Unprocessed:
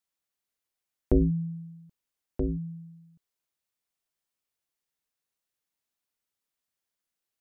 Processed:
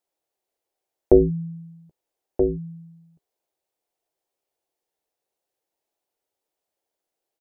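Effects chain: band shelf 530 Hz +13 dB; doubler 13 ms -13 dB

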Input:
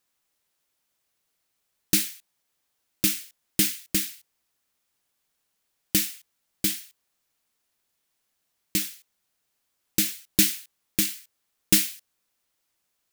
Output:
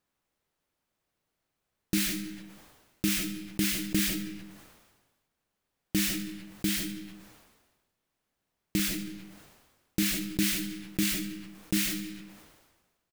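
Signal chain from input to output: low shelf 410 Hz +5.5 dB; limiter -11.5 dBFS, peak gain reduction 10 dB; high shelf 2900 Hz -11 dB; doubler 44 ms -14 dB; on a send at -15 dB: reverb RT60 0.65 s, pre-delay 0.115 s; on the sum: sustainer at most 44 dB/s

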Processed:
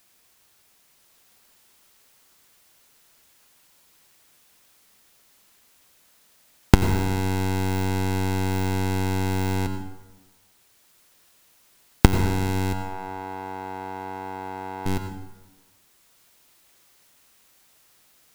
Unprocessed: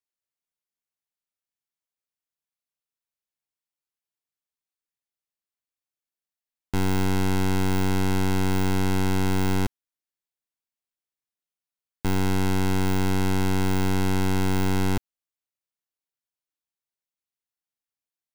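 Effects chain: recorder AGC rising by 24 dB/s; 12.73–14.86 band-pass 860 Hz, Q 1.4; requantised 10-bit, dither triangular; plate-style reverb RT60 1.1 s, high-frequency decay 0.55×, pre-delay 75 ms, DRR 7.5 dB; gain -1.5 dB

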